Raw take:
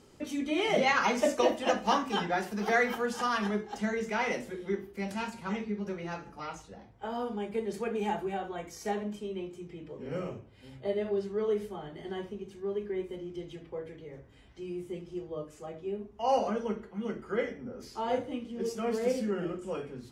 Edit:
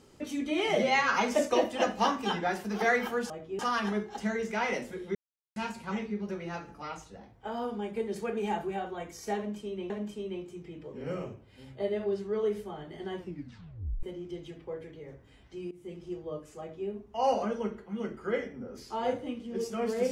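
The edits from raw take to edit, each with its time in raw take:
0.75–1.01 stretch 1.5×
4.73–5.14 mute
8.95–9.48 loop, 2 plays
12.24 tape stop 0.84 s
14.76–15.05 fade in, from -19.5 dB
15.64–15.93 copy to 3.17

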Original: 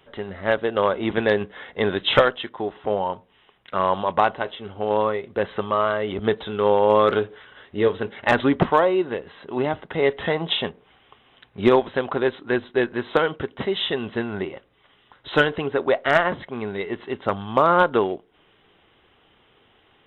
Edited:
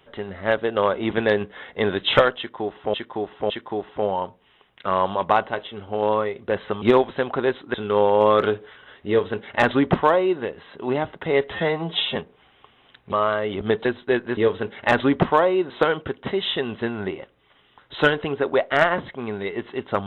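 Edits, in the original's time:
2.38–2.94 loop, 3 plays
5.7–6.43 swap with 11.6–12.52
7.77–9.1 copy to 13.04
10.22–10.64 stretch 1.5×

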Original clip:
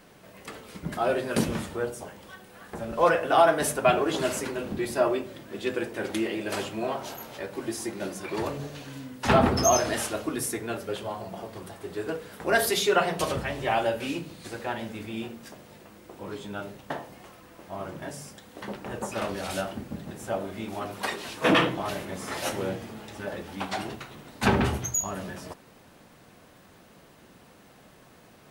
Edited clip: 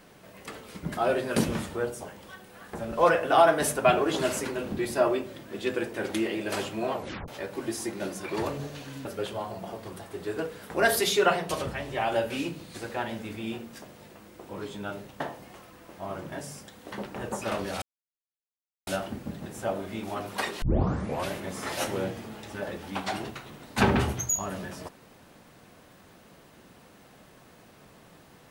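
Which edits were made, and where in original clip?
6.93 tape stop 0.35 s
9.05–10.75 cut
13.07–13.82 gain -3 dB
19.52 insert silence 1.05 s
21.27 tape start 0.69 s

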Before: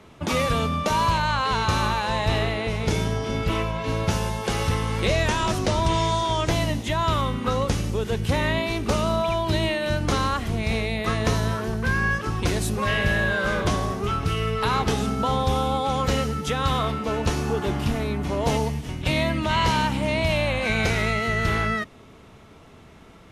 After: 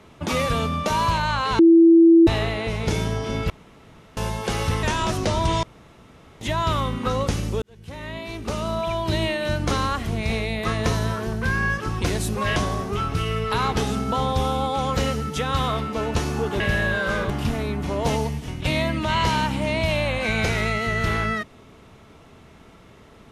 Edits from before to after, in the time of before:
1.59–2.27 bleep 332 Hz -8.5 dBFS
3.5–4.17 room tone
4.83–5.24 cut
6.04–6.82 room tone
8.03–9.59 fade in
12.97–13.67 move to 17.71

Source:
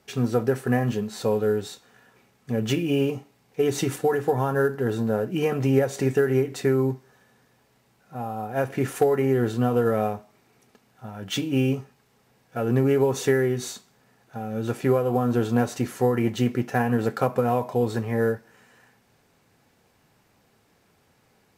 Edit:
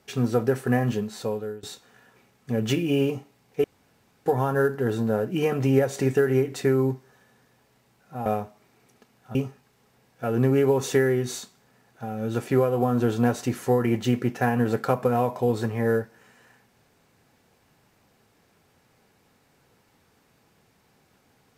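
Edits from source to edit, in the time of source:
0.98–1.63 fade out, to -20 dB
3.64–4.26 room tone
8.26–9.99 cut
11.08–11.68 cut

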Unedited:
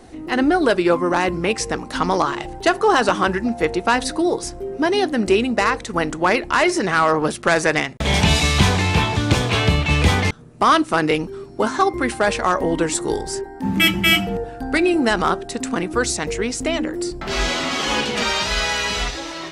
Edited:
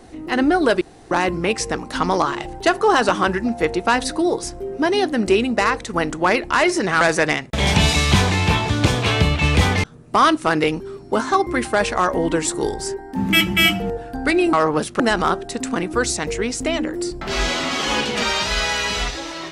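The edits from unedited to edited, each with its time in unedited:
0.81–1.11 room tone
7.01–7.48 move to 15

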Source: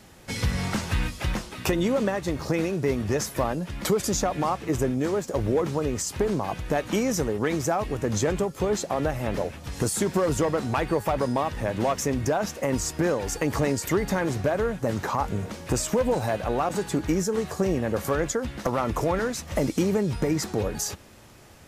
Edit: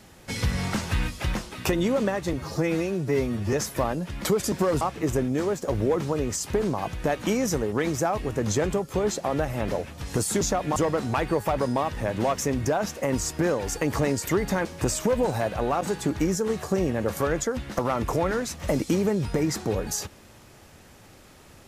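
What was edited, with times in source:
2.33–3.13 stretch 1.5×
4.12–4.47 swap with 10.07–10.36
14.25–15.53 cut

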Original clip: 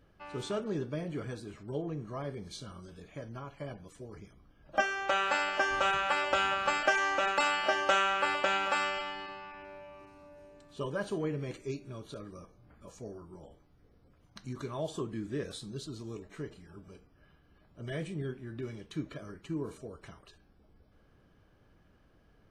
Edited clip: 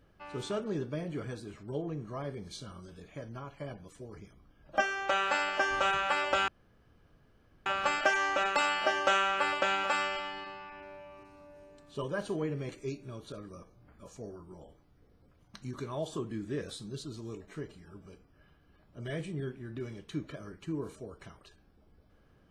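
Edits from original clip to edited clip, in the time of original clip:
6.48 insert room tone 1.18 s

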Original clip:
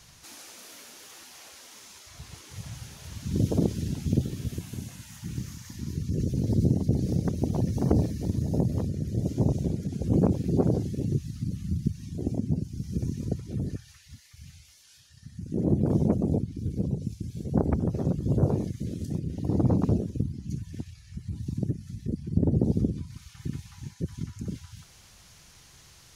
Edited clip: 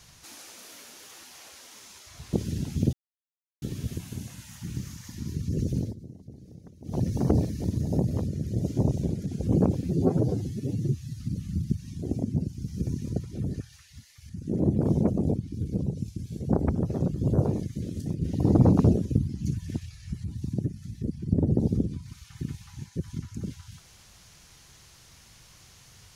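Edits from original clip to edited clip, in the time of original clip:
2.33–3.63 cut
4.23 insert silence 0.69 s
6.39–7.61 dip -21 dB, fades 0.17 s
10.44–11.35 stretch 1.5×
14.45–15.34 cut
19.26–21.28 gain +4.5 dB

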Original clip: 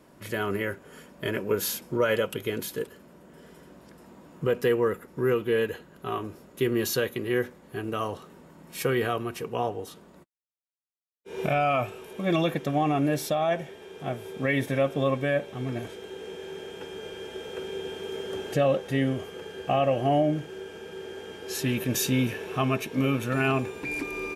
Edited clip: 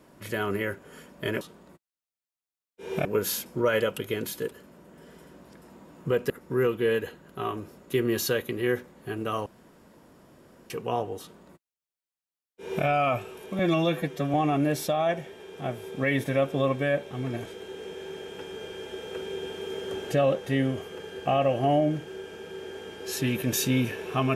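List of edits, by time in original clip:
4.66–4.97 cut
8.13–9.37 room tone
9.88–11.52 copy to 1.41
12.26–12.76 stretch 1.5×

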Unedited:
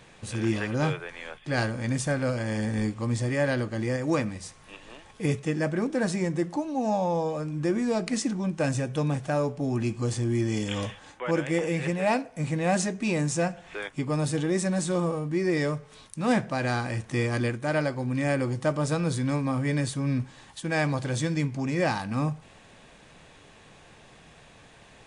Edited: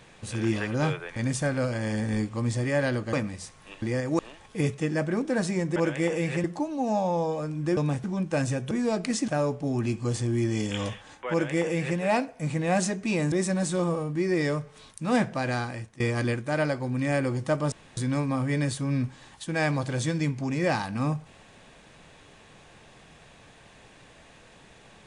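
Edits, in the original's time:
1.16–1.81 cut
3.78–4.15 move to 4.84
7.74–8.31 swap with 8.98–9.25
11.27–11.95 copy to 6.41
13.29–14.48 cut
16.45–17.16 fade out equal-power, to -21 dB
18.88–19.13 room tone

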